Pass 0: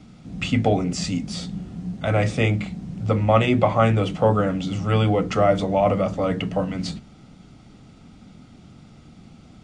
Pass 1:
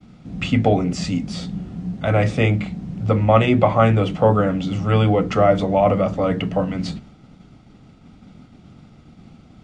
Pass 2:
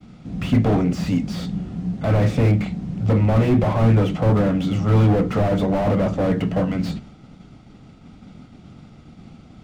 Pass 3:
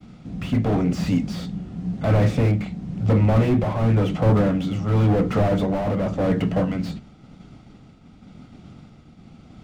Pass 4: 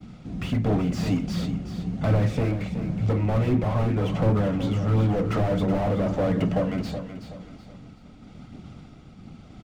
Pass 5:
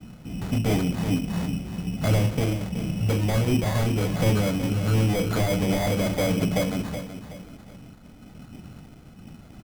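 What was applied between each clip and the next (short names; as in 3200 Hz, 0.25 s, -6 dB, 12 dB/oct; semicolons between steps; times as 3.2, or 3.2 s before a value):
expander -43 dBFS; high shelf 5400 Hz -9.5 dB; gain +3 dB
slew limiter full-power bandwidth 50 Hz; gain +2 dB
tremolo 0.93 Hz, depth 39%
compressor 2.5:1, threshold -22 dBFS, peak gain reduction 7 dB; phaser 1.4 Hz, delay 3.3 ms, feedback 27%; on a send: feedback echo 0.374 s, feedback 35%, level -10 dB
sample-and-hold 16×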